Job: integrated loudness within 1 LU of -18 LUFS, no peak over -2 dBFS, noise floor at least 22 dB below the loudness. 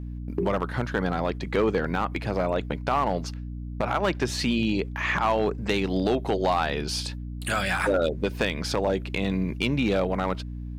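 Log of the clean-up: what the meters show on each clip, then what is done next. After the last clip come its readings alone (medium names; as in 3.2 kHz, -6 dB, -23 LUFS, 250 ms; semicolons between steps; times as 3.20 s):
clipped samples 0.7%; clipping level -15.5 dBFS; hum 60 Hz; highest harmonic 300 Hz; hum level -32 dBFS; loudness -26.5 LUFS; peak level -15.5 dBFS; loudness target -18.0 LUFS
-> clip repair -15.5 dBFS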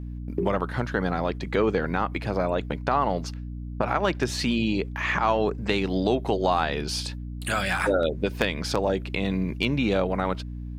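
clipped samples 0.0%; hum 60 Hz; highest harmonic 300 Hz; hum level -32 dBFS
-> de-hum 60 Hz, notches 5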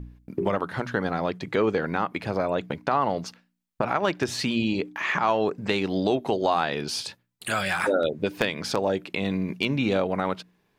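hum not found; loudness -26.5 LUFS; peak level -7.5 dBFS; loudness target -18.0 LUFS
-> trim +8.5 dB; peak limiter -2 dBFS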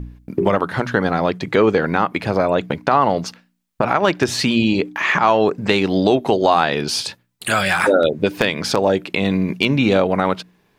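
loudness -18.0 LUFS; peak level -2.0 dBFS; noise floor -61 dBFS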